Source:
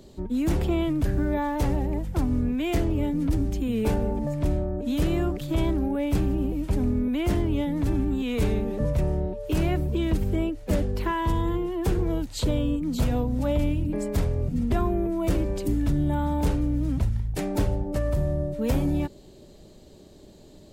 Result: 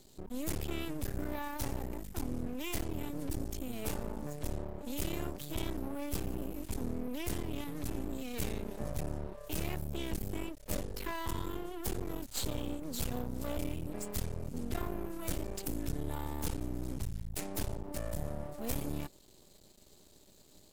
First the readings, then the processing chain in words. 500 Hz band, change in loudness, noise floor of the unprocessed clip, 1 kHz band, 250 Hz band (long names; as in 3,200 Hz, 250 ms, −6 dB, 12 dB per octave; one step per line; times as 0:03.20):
−13.0 dB, −13.0 dB, −49 dBFS, −11.0 dB, −14.5 dB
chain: first-order pre-emphasis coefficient 0.8
half-wave rectification
level +4.5 dB